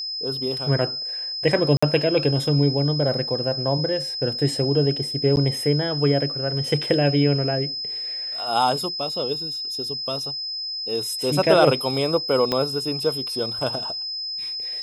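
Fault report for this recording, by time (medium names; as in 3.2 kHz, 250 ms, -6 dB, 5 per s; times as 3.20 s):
whine 5.1 kHz -27 dBFS
1.77–1.82 s: dropout 55 ms
5.36–5.37 s: dropout 9.9 ms
12.52 s: pop -9 dBFS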